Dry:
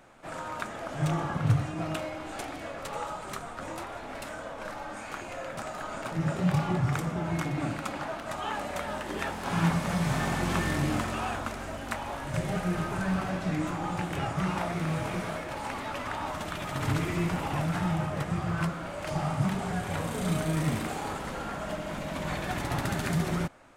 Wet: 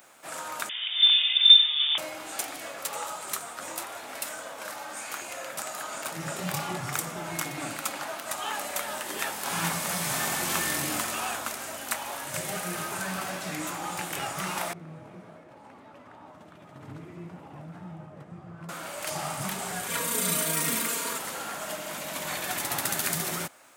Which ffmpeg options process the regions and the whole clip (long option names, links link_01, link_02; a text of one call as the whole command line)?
ffmpeg -i in.wav -filter_complex "[0:a]asettb=1/sr,asplit=3[link_01][link_02][link_03];[link_01]atrim=end=0.694[link_04];[link_02]atrim=start=0.69:end=1.98,asetpts=PTS-STARTPTS,afade=type=in:duration=0.004:curve=qsin,afade=type=out:start_time=1.286:duration=0.004:curve=qsin,lowshelf=frequency=140:gain=6,bandreject=frequency=1300:width=9.4,lowpass=frequency=3100:width_type=q:width=0.5098,lowpass=frequency=3100:width_type=q:width=0.6013,lowpass=frequency=3100:width_type=q:width=0.9,lowpass=frequency=3100:width_type=q:width=2.563,afreqshift=-3700[link_05];[link_03]atrim=start=1.976[link_06];[link_04][link_05]acrossfade=duration=0.004:curve1=hsin:curve2=qsin[link_07];[link_07][link_06]acrossfade=duration=0.004:curve1=qsin:curve2=hsin,asettb=1/sr,asplit=3[link_08][link_09][link_10];[link_08]atrim=end=14.734[link_11];[link_09]atrim=start=14.73:end=18.69,asetpts=PTS-STARTPTS,afade=type=in:duration=0.004:curve=qsin,afade=type=out:start_time=3.956:duration=0.004:curve=qsin,bandpass=frequency=100:width_type=q:width=0.59,lowshelf=frequency=87:gain=-9[link_12];[link_10]atrim=start=18.686[link_13];[link_11][link_12]acrossfade=duration=0.004:curve1=hsin:curve2=qsin[link_14];[link_14][link_13]acrossfade=duration=0.004:curve1=qsin:curve2=hsin,asettb=1/sr,asplit=3[link_15][link_16][link_17];[link_15]atrim=end=19.884[link_18];[link_16]atrim=start=19.88:end=21.18,asetpts=PTS-STARTPTS,afade=type=in:duration=0.004:curve=qsin,afade=type=out:start_time=1.296:duration=0.004:curve=qsin,asuperstop=centerf=780:order=20:qfactor=4.1,aecho=1:1:4.3:0.9,atrim=end_sample=57330[link_19];[link_17]atrim=start=21.176[link_20];[link_18][link_19]acrossfade=duration=0.004:curve1=hsin:curve2=qsin[link_21];[link_21][link_20]acrossfade=duration=0.004:curve1=qsin:curve2=hsin,highpass=71,aemphasis=mode=production:type=riaa" out.wav